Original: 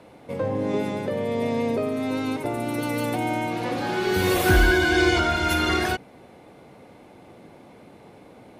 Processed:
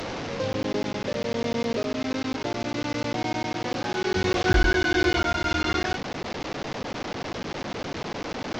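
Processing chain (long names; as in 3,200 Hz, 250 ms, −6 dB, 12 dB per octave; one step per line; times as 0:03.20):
linear delta modulator 32 kbit/s, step −24 dBFS
regular buffer underruns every 0.10 s, samples 512, zero, from 0:00.53
level −2.5 dB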